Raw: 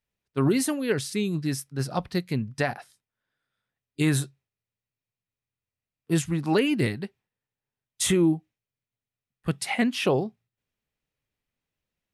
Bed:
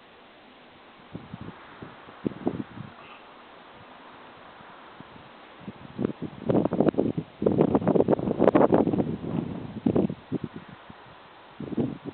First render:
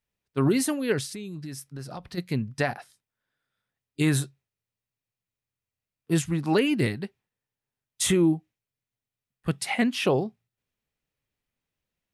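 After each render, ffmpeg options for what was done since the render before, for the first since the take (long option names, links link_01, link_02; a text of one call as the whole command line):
ffmpeg -i in.wav -filter_complex "[0:a]asplit=3[link_01][link_02][link_03];[link_01]afade=type=out:start_time=1.05:duration=0.02[link_04];[link_02]acompressor=threshold=-34dB:ratio=6:attack=3.2:release=140:knee=1:detection=peak,afade=type=in:start_time=1.05:duration=0.02,afade=type=out:start_time=2.17:duration=0.02[link_05];[link_03]afade=type=in:start_time=2.17:duration=0.02[link_06];[link_04][link_05][link_06]amix=inputs=3:normalize=0" out.wav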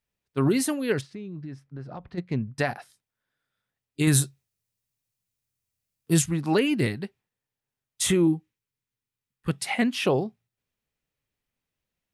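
ffmpeg -i in.wav -filter_complex "[0:a]asplit=3[link_01][link_02][link_03];[link_01]afade=type=out:start_time=1:duration=0.02[link_04];[link_02]adynamicsmooth=sensitivity=1.5:basefreq=1900,afade=type=in:start_time=1:duration=0.02,afade=type=out:start_time=2.57:duration=0.02[link_05];[link_03]afade=type=in:start_time=2.57:duration=0.02[link_06];[link_04][link_05][link_06]amix=inputs=3:normalize=0,asettb=1/sr,asplit=3[link_07][link_08][link_09];[link_07]atrim=end=4.074[link_10];[link_08]atrim=start=4.07:end=6.26,asetpts=PTS-STARTPTS,afade=type=in:duration=0.004:curve=qsin,afade=type=out:start_time=2.186:duration=0.004:curve=qsin,bass=frequency=250:gain=4,treble=frequency=4000:gain=9[link_11];[link_09]atrim=start=6.256[link_12];[link_10][link_11]acrossfade=duration=0.004:curve1=hsin:curve2=qsin[link_13];[link_13][link_12]acrossfade=duration=0.004:curve1=qsin:curve2=hsin,asettb=1/sr,asplit=3[link_14][link_15][link_16];[link_14]atrim=end=8.274[link_17];[link_15]atrim=start=8.27:end=9.5,asetpts=PTS-STARTPTS,afade=type=in:duration=0.004:curve=qsin,afade=type=out:start_time=1.226:duration=0.004:curve=qsin,asuperstop=centerf=670:order=4:qfactor=2.7[link_18];[link_16]atrim=start=9.496[link_19];[link_17][link_18]acrossfade=duration=0.004:curve1=hsin:curve2=qsin[link_20];[link_20][link_19]acrossfade=duration=0.004:curve1=qsin:curve2=hsin" out.wav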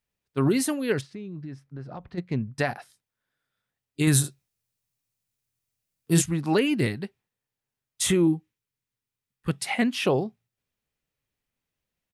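ffmpeg -i in.wav -filter_complex "[0:a]asplit=3[link_01][link_02][link_03];[link_01]afade=type=out:start_time=4.23:duration=0.02[link_04];[link_02]asplit=2[link_05][link_06];[link_06]adelay=41,volume=-6dB[link_07];[link_05][link_07]amix=inputs=2:normalize=0,afade=type=in:start_time=4.23:duration=0.02,afade=type=out:start_time=6.2:duration=0.02[link_08];[link_03]afade=type=in:start_time=6.2:duration=0.02[link_09];[link_04][link_08][link_09]amix=inputs=3:normalize=0" out.wav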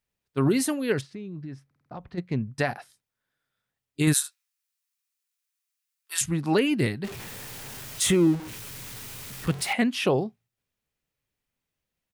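ffmpeg -i in.wav -filter_complex "[0:a]asplit=3[link_01][link_02][link_03];[link_01]afade=type=out:start_time=4.12:duration=0.02[link_04];[link_02]highpass=frequency=1100:width=0.5412,highpass=frequency=1100:width=1.3066,afade=type=in:start_time=4.12:duration=0.02,afade=type=out:start_time=6.21:duration=0.02[link_05];[link_03]afade=type=in:start_time=6.21:duration=0.02[link_06];[link_04][link_05][link_06]amix=inputs=3:normalize=0,asettb=1/sr,asplit=3[link_07][link_08][link_09];[link_07]atrim=end=7.044[link_10];[link_08]atrim=start=7.04:end=9.73,asetpts=PTS-STARTPTS,afade=type=in:duration=0.004:curve=qsin,afade=type=out:start_time=2.686:duration=0.004:curve=qsin,aeval=exprs='val(0)+0.5*0.0237*sgn(val(0))':channel_layout=same[link_11];[link_09]atrim=start=9.726[link_12];[link_10][link_11]acrossfade=duration=0.004:curve1=hsin:curve2=qsin[link_13];[link_13][link_12]acrossfade=duration=0.004:curve1=qsin:curve2=hsin,asplit=6[link_14][link_15][link_16][link_17][link_18][link_19];[link_14]atrim=end=1.712[link_20];[link_15]atrim=start=1.658:end=1.712[link_21];[link_16]atrim=start=1.658:end=1.712[link_22];[link_17]atrim=start=1.658:end=1.712[link_23];[link_18]atrim=start=1.658:end=1.712[link_24];[link_19]atrim=start=1.908[link_25];[link_20][link_21]acrossfade=duration=0.004:curve1=hsin:curve2=hsin[link_26];[link_26][link_22]acrossfade=duration=0.004:curve1=hsin:curve2=hsin[link_27];[link_27][link_23]acrossfade=duration=0.004:curve1=hsin:curve2=hsin[link_28];[link_28][link_24]acrossfade=duration=0.004:curve1=hsin:curve2=hsin[link_29];[link_29][link_25]acrossfade=duration=0.004:curve1=hsin:curve2=hsin" out.wav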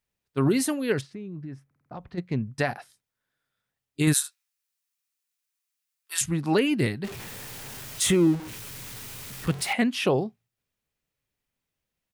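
ffmpeg -i in.wav -filter_complex "[0:a]asettb=1/sr,asplit=3[link_01][link_02][link_03];[link_01]atrim=end=1.124[link_04];[link_02]atrim=start=1.12:end=1.93,asetpts=PTS-STARTPTS,afade=type=in:duration=0.004:curve=qsin,afade=type=out:start_time=0.806:duration=0.004:curve=qsin,equalizer=frequency=4300:width_type=o:width=1.2:gain=-6.5[link_05];[link_03]atrim=start=1.926[link_06];[link_04][link_05]acrossfade=duration=0.004:curve1=hsin:curve2=qsin[link_07];[link_07][link_06]acrossfade=duration=0.004:curve1=qsin:curve2=hsin" out.wav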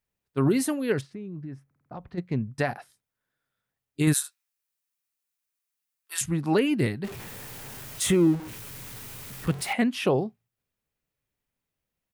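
ffmpeg -i in.wav -af "equalizer=frequency=4700:width=0.49:gain=-4" out.wav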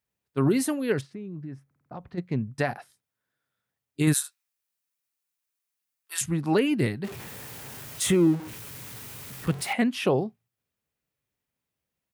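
ffmpeg -i in.wav -af "highpass=61" out.wav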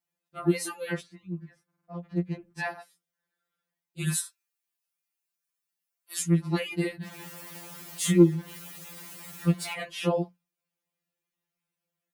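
ffmpeg -i in.wav -af "afftfilt=real='re*2.83*eq(mod(b,8),0)':imag='im*2.83*eq(mod(b,8),0)':win_size=2048:overlap=0.75" out.wav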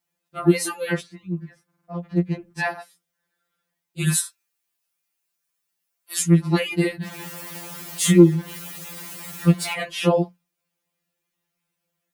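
ffmpeg -i in.wav -af "volume=7.5dB,alimiter=limit=-2dB:level=0:latency=1" out.wav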